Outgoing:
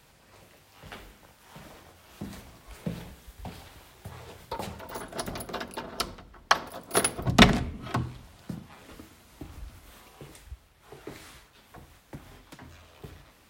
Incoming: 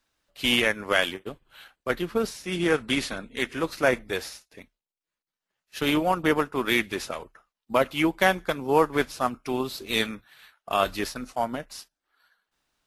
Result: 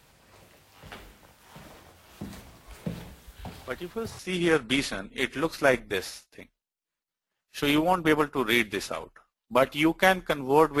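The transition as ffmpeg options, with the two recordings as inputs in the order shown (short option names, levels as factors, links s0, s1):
-filter_complex "[1:a]asplit=2[s0][s1];[0:a]apad=whole_dur=10.8,atrim=end=10.8,atrim=end=4.192[s2];[s1]atrim=start=2.378:end=8.99[s3];[s0]atrim=start=1.5:end=2.38,asetpts=PTS-STARTPTS,volume=0.398,afade=t=in:d=0.004:c=hsin,afade=t=out:st=0.876:d=0.004:c=hsin,adelay=3310[s4];[s2][s3]acrossfade=d=0.004:c1=hsin:c2=hsin[s5];[s5][s4]amix=inputs=2:normalize=0"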